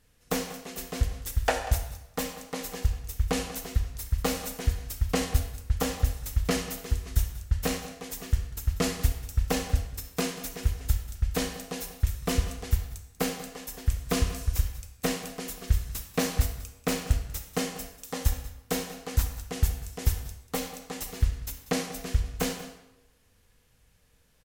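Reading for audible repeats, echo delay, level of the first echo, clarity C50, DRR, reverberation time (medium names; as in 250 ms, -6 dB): 1, 190 ms, -15.5 dB, 7.5 dB, 6.0 dB, 0.95 s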